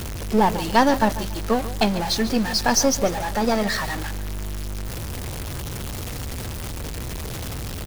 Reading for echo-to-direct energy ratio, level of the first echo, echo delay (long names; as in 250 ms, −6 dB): −14.0 dB, −14.5 dB, 143 ms